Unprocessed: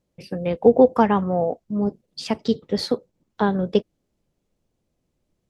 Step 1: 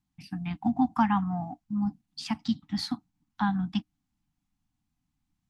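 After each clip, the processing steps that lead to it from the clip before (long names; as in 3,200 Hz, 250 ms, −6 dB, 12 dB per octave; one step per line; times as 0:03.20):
Chebyshev band-stop filter 300–740 Hz, order 4
level −4.5 dB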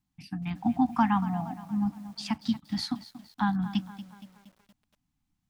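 feedback echo at a low word length 234 ms, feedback 55%, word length 8 bits, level −14.5 dB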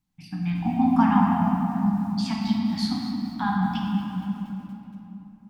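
rectangular room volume 170 cubic metres, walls hard, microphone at 0.63 metres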